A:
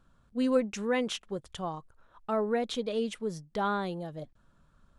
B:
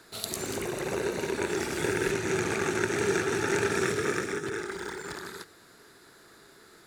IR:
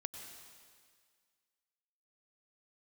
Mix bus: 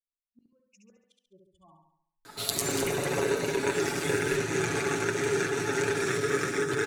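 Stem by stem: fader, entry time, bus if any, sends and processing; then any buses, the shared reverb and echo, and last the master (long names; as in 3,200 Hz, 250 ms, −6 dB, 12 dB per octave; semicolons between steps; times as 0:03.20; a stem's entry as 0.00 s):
0:01.55 −20.5 dB → 0:02.15 −9.5 dB, 0.00 s, no send, echo send −3.5 dB, spectral dynamics exaggerated over time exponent 3; gate with flip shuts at −30 dBFS, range −25 dB
+0.5 dB, 2.25 s, no send, no echo send, comb filter 7.1 ms, depth 68%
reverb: not used
echo: repeating echo 69 ms, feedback 48%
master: hum removal 49.42 Hz, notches 39; speech leveller 0.5 s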